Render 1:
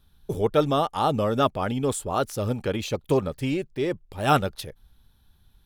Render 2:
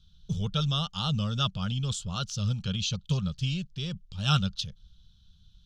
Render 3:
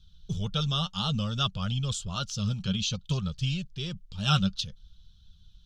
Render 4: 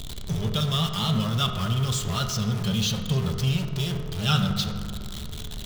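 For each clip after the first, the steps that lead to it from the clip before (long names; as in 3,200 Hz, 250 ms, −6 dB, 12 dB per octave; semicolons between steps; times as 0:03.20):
drawn EQ curve 120 Hz 0 dB, 190 Hz +3 dB, 300 Hz −27 dB, 490 Hz −20 dB, 780 Hz −21 dB, 1,400 Hz −8 dB, 2,000 Hz −20 dB, 3,000 Hz +4 dB, 6,400 Hz +3 dB, 11,000 Hz −25 dB; level +1.5 dB
flanger 0.57 Hz, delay 1.1 ms, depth 4.4 ms, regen +54%; level +5 dB
converter with a step at zero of −29 dBFS; convolution reverb RT60 2.0 s, pre-delay 4 ms, DRR 4 dB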